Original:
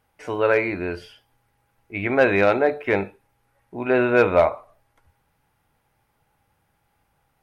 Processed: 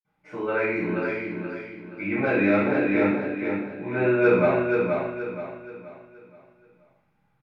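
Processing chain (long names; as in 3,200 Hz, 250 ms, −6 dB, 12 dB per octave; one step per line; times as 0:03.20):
repeating echo 476 ms, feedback 37%, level −4.5 dB
convolution reverb, pre-delay 47 ms
level −3 dB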